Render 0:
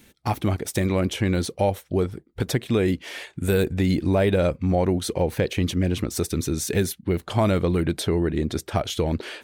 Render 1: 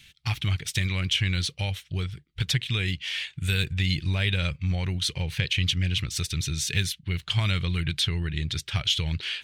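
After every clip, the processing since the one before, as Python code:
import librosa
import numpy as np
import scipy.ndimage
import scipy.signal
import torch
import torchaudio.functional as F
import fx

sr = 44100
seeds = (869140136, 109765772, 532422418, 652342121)

y = fx.curve_eq(x, sr, hz=(150.0, 230.0, 650.0, 3000.0, 15000.0), db=(0, -17, -19, 10, -10))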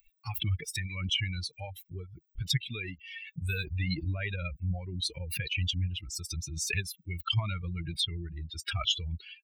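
y = fx.bin_expand(x, sr, power=3.0)
y = fx.pre_swell(y, sr, db_per_s=53.0)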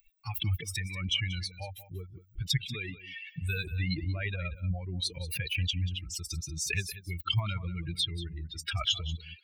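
y = x + 10.0 ** (-15.0 / 20.0) * np.pad(x, (int(186 * sr / 1000.0), 0))[:len(x)]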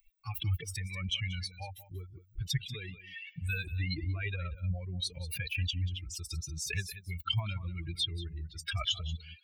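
y = fx.comb_cascade(x, sr, direction='rising', hz=0.51)
y = y * librosa.db_to_amplitude(1.0)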